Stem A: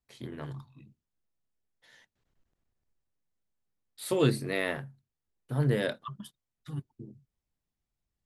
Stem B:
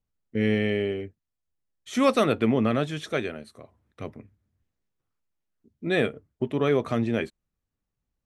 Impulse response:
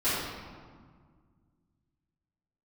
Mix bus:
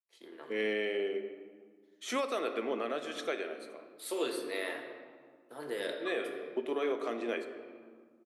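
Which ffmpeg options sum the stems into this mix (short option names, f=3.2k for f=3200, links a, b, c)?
-filter_complex "[0:a]agate=range=-14dB:threshold=-54dB:ratio=16:detection=peak,adynamicequalizer=threshold=0.00447:dfrequency=3200:dqfactor=0.7:tfrequency=3200:tqfactor=0.7:attack=5:release=100:ratio=0.375:range=2.5:mode=boostabove:tftype=highshelf,volume=-8dB,asplit=3[a][b][c];[b]volume=-13.5dB[d];[1:a]adelay=150,volume=-3.5dB,asplit=2[e][f];[f]volume=-19.5dB[g];[c]apad=whole_len=370475[h];[e][h]sidechaincompress=threshold=-44dB:ratio=8:attack=16:release=564[i];[2:a]atrim=start_sample=2205[j];[d][g]amix=inputs=2:normalize=0[k];[k][j]afir=irnorm=-1:irlink=0[l];[a][i][l]amix=inputs=3:normalize=0,highpass=f=340:w=0.5412,highpass=f=340:w=1.3066,alimiter=limit=-23.5dB:level=0:latency=1:release=347"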